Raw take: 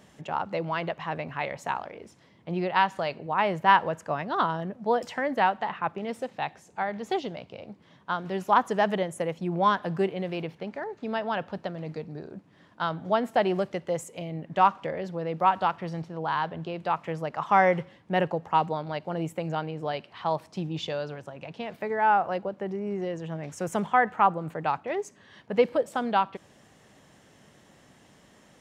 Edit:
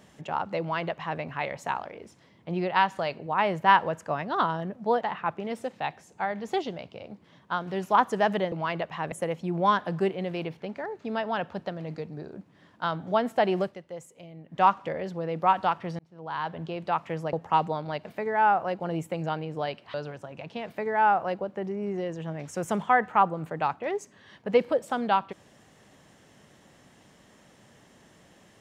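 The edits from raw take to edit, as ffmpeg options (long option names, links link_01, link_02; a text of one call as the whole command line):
ffmpeg -i in.wav -filter_complex "[0:a]asplit=11[link_01][link_02][link_03][link_04][link_05][link_06][link_07][link_08][link_09][link_10][link_11];[link_01]atrim=end=5.012[link_12];[link_02]atrim=start=5.588:end=9.102[link_13];[link_03]atrim=start=0.598:end=1.202[link_14];[link_04]atrim=start=9.098:end=13.75,asetpts=PTS-STARTPTS,afade=type=out:start_time=4.502:duration=0.15:silence=0.298538[link_15];[link_05]atrim=start=13.75:end=14.45,asetpts=PTS-STARTPTS,volume=-10.5dB[link_16];[link_06]atrim=start=14.45:end=15.97,asetpts=PTS-STARTPTS,afade=type=in:duration=0.15:silence=0.298538,afade=type=out:start_time=1.516:duration=0.004:curve=hsin[link_17];[link_07]atrim=start=15.97:end=17.312,asetpts=PTS-STARTPTS,afade=type=in:duration=0.64[link_18];[link_08]atrim=start=18.338:end=19.062[link_19];[link_09]atrim=start=21.688:end=22.442[link_20];[link_10]atrim=start=19.058:end=20.202[link_21];[link_11]atrim=start=20.978[link_22];[link_12][link_13]acrossfade=duration=0.004:curve1=hsin:curve2=hsin[link_23];[link_23][link_14]acrossfade=duration=0.004:curve1=hsin:curve2=hsin[link_24];[link_15][link_16][link_17][link_18]concat=n=4:v=0:a=1[link_25];[link_24][link_25]acrossfade=duration=0.004:curve1=hsin:curve2=hsin[link_26];[link_26][link_19]acrossfade=duration=0.004:curve1=hsin:curve2=hsin[link_27];[link_27][link_20]acrossfade=duration=0.004:curve1=hsin:curve2=hsin[link_28];[link_28][link_21]acrossfade=duration=0.004:curve1=hsin:curve2=hsin[link_29];[link_29][link_22]acrossfade=duration=0.004:curve1=hsin:curve2=hsin" out.wav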